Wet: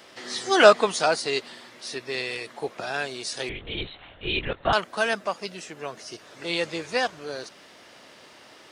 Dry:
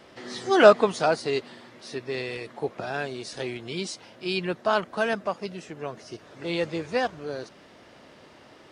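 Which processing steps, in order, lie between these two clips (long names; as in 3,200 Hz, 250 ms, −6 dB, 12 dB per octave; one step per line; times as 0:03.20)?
spectral tilt +2.5 dB per octave
0:03.49–0:04.73: linear-prediction vocoder at 8 kHz whisper
level +1.5 dB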